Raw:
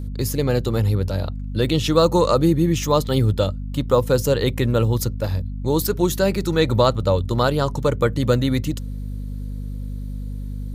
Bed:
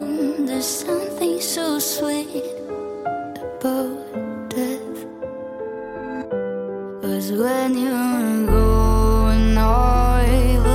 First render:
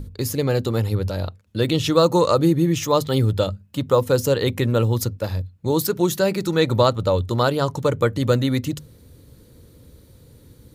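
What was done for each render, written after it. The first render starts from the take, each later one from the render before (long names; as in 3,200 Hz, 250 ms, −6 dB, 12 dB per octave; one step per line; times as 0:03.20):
mains-hum notches 50/100/150/200/250 Hz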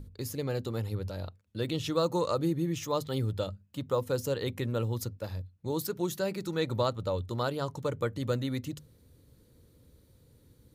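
level −12 dB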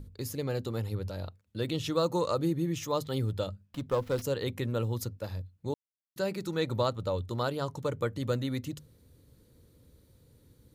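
0:03.65–0:04.22: windowed peak hold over 5 samples
0:05.74–0:06.16: silence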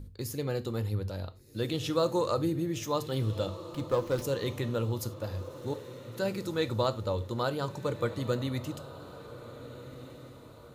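feedback delay with all-pass diffusion 1,503 ms, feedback 44%, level −14 dB
reverb whose tail is shaped and stops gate 120 ms falling, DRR 10.5 dB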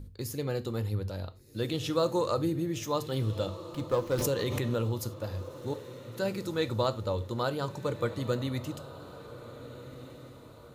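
0:04.12–0:04.92: background raised ahead of every attack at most 24 dB per second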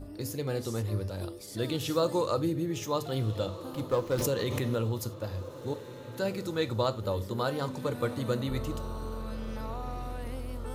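mix in bed −22 dB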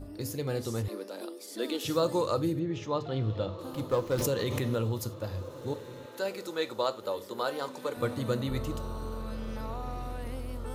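0:00.88–0:01.85: Butterworth high-pass 230 Hz 48 dB per octave
0:02.59–0:03.59: high-frequency loss of the air 170 metres
0:06.06–0:07.97: high-pass filter 370 Hz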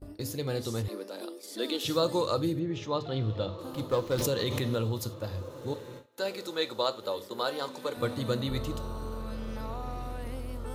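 noise gate with hold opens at −34 dBFS
dynamic equaliser 3,800 Hz, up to +6 dB, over −55 dBFS, Q 2.3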